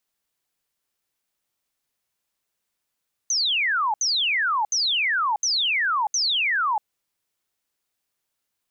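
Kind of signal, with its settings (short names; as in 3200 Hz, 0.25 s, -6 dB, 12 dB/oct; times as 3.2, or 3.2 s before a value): burst of laser zaps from 6400 Hz, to 810 Hz, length 0.64 s sine, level -19.5 dB, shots 5, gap 0.07 s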